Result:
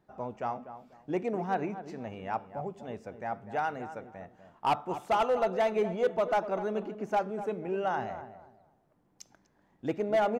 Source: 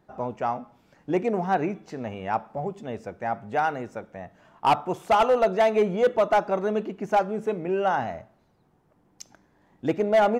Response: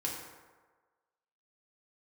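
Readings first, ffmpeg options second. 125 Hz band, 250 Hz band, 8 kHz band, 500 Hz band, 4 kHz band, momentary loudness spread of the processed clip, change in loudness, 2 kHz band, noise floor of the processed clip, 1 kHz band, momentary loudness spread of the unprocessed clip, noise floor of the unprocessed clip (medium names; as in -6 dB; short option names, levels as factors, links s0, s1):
-6.5 dB, -7.0 dB, no reading, -7.0 dB, -7.0 dB, 15 LU, -7.0 dB, -7.0 dB, -69 dBFS, -7.0 dB, 15 LU, -64 dBFS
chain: -filter_complex "[0:a]asplit=2[s0][s1];[s1]adelay=246,lowpass=f=1300:p=1,volume=0.282,asplit=2[s2][s3];[s3]adelay=246,lowpass=f=1300:p=1,volume=0.28,asplit=2[s4][s5];[s5]adelay=246,lowpass=f=1300:p=1,volume=0.28[s6];[s0][s2][s4][s6]amix=inputs=4:normalize=0,volume=0.447"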